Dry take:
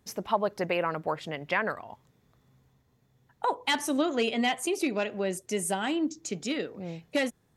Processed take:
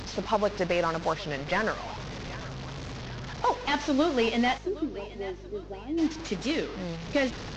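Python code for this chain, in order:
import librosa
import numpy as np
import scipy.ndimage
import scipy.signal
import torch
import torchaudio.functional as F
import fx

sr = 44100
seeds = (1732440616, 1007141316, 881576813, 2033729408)

p1 = fx.delta_mod(x, sr, bps=32000, step_db=-35.0)
p2 = np.clip(10.0 ** (22.0 / 20.0) * p1, -1.0, 1.0) / 10.0 ** (22.0 / 20.0)
p3 = p1 + (p2 * 10.0 ** (-10.0 / 20.0))
p4 = fx.ladder_bandpass(p3, sr, hz=370.0, resonance_pct=60, at=(4.57, 5.97), fade=0.02)
p5 = fx.add_hum(p4, sr, base_hz=50, snr_db=16)
p6 = p5 + fx.echo_thinned(p5, sr, ms=776, feedback_pct=58, hz=420.0, wet_db=-16.5, dry=0)
y = fx.record_warp(p6, sr, rpm=33.33, depth_cents=100.0)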